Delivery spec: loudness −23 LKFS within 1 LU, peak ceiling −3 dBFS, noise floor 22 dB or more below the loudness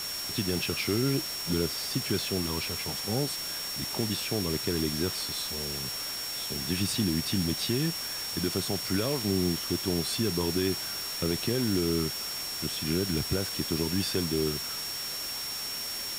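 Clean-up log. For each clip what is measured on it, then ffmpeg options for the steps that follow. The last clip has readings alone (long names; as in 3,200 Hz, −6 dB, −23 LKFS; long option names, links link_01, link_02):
interfering tone 5,500 Hz; level of the tone −35 dBFS; background noise floor −35 dBFS; target noise floor −52 dBFS; integrated loudness −29.5 LKFS; sample peak −15.0 dBFS; target loudness −23.0 LKFS
→ -af "bandreject=frequency=5500:width=30"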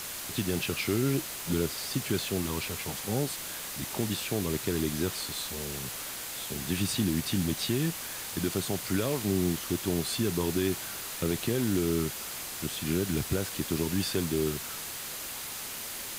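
interfering tone none found; background noise floor −39 dBFS; target noise floor −53 dBFS
→ -af "afftdn=noise_reduction=14:noise_floor=-39"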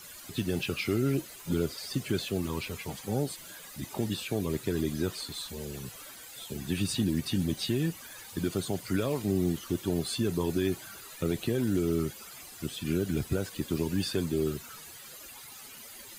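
background noise floor −47 dBFS; target noise floor −54 dBFS
→ -af "afftdn=noise_reduction=7:noise_floor=-47"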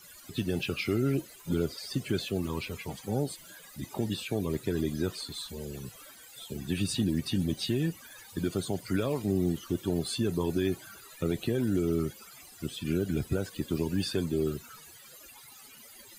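background noise floor −52 dBFS; target noise floor −54 dBFS
→ -af "afftdn=noise_reduction=6:noise_floor=-52"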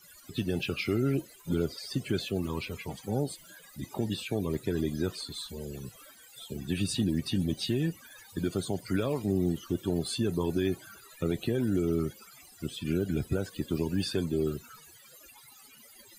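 background noise floor −55 dBFS; integrated loudness −32.0 LKFS; sample peak −17.5 dBFS; target loudness −23.0 LKFS
→ -af "volume=9dB"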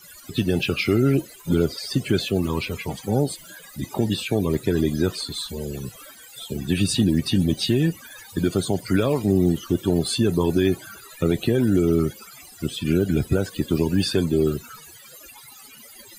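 integrated loudness −23.0 LKFS; sample peak −8.5 dBFS; background noise floor −46 dBFS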